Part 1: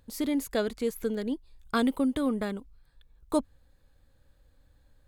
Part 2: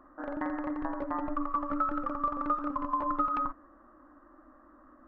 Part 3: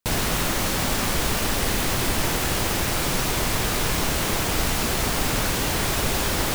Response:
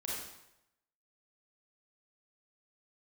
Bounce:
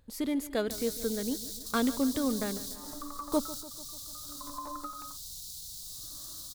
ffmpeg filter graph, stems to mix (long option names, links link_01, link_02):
-filter_complex "[0:a]volume=-2.5dB,asplit=3[link_01][link_02][link_03];[link_02]volume=-16dB[link_04];[1:a]aeval=exprs='val(0)*pow(10,-28*(0.5-0.5*cos(2*PI*0.65*n/s))/20)':channel_layout=same,adelay=1650,volume=0dB[link_05];[2:a]firequalizer=gain_entry='entry(180,0);entry(280,-19);entry(680,-8);entry(2100,-24);entry(3800,15)':delay=0.05:min_phase=1,acrossover=split=150|3000[link_06][link_07][link_08];[link_07]acompressor=threshold=-40dB:ratio=2[link_09];[link_06][link_09][link_08]amix=inputs=3:normalize=0,alimiter=limit=-14dB:level=0:latency=1,adelay=650,volume=-9dB[link_10];[link_03]apad=whole_len=321548[link_11];[link_10][link_11]sidechaingate=range=-9dB:threshold=-53dB:ratio=16:detection=peak[link_12];[link_05][link_12]amix=inputs=2:normalize=0,acompressor=threshold=-40dB:ratio=3,volume=0dB[link_13];[link_04]aecho=0:1:147|294|441|588|735|882|1029|1176|1323|1470:1|0.6|0.36|0.216|0.13|0.0778|0.0467|0.028|0.0168|0.0101[link_14];[link_01][link_13][link_14]amix=inputs=3:normalize=0"